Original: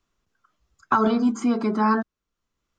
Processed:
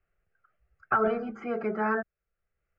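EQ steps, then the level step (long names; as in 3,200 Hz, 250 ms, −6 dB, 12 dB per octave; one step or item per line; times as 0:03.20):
low-pass filter 3,100 Hz 24 dB per octave
phaser with its sweep stopped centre 1,000 Hz, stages 6
0.0 dB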